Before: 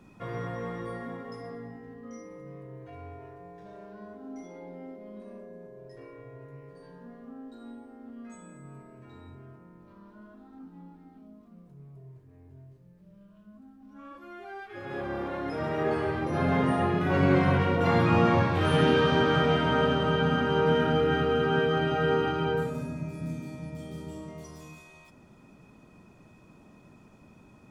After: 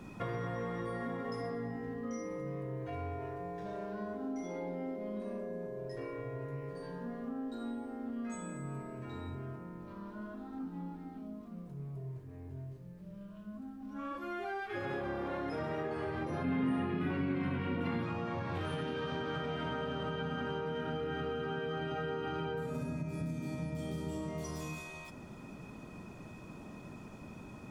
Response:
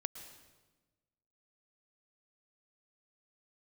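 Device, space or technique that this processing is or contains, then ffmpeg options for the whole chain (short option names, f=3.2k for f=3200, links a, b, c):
serial compression, leveller first: -filter_complex "[0:a]acompressor=threshold=-29dB:ratio=6,acompressor=threshold=-41dB:ratio=6,asettb=1/sr,asplit=3[a][b][c];[a]atrim=end=16.444[d];[b]atrim=start=16.44:end=18.03,asetpts=PTS-STARTPTS,afade=t=in:d=0.004:c=qsin,afade=t=out:st=1.586:d=0.004:c=qsin,equalizer=f=250:t=o:w=0.67:g=10,equalizer=f=630:t=o:w=0.67:g=-6,equalizer=f=2.5k:t=o:w=0.67:g=5,equalizer=f=6.3k:t=o:w=0.67:g=-9[e];[c]atrim=start=18.026[f];[d][e]acrossfade=d=0.004:c1=hsin:c2=qsin[g];[g][f]acrossfade=d=0.004:c1=qsin:c2=hsin,volume=6dB"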